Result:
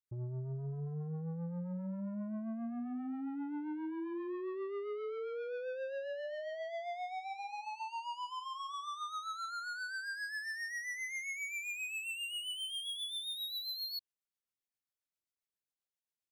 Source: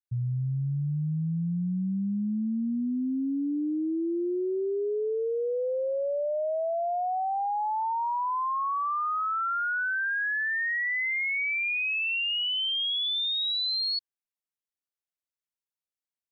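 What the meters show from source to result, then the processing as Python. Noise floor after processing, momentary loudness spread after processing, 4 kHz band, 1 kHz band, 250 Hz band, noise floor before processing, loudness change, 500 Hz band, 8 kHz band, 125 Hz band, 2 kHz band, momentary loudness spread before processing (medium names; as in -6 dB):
under -85 dBFS, 4 LU, -12.0 dB, -13.5 dB, -11.0 dB, under -85 dBFS, -12.0 dB, -11.5 dB, no reading, -11.0 dB, -12.5 dB, 4 LU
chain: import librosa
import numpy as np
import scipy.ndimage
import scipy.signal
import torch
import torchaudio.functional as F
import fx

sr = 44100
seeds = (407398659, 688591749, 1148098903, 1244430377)

y = 10.0 ** (-35.5 / 20.0) * np.tanh(x / 10.0 ** (-35.5 / 20.0))
y = fx.rotary(y, sr, hz=7.5)
y = y * librosa.db_to_amplitude(-1.5)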